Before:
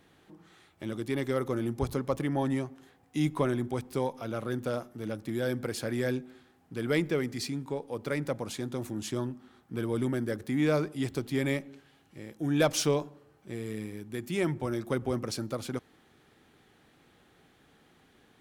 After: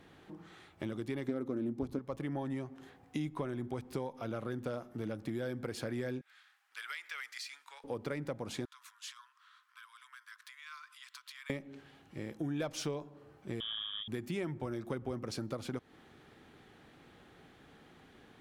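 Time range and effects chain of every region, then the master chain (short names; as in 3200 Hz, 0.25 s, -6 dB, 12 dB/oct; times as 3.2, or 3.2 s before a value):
1.28–1.99 bell 270 Hz +13.5 dB 1 oct + Doppler distortion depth 0.14 ms
6.21–7.84 HPF 1300 Hz 24 dB/oct + compressor 5:1, threshold -40 dBFS
8.65–11.5 compressor 3:1, threshold -40 dBFS + rippled Chebyshev high-pass 1000 Hz, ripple 3 dB + short-mantissa float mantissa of 4-bit
13.6–14.08 air absorption 150 m + inverted band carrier 3500 Hz
whole clip: high shelf 5800 Hz -9 dB; compressor 5:1, threshold -39 dBFS; gain +3.5 dB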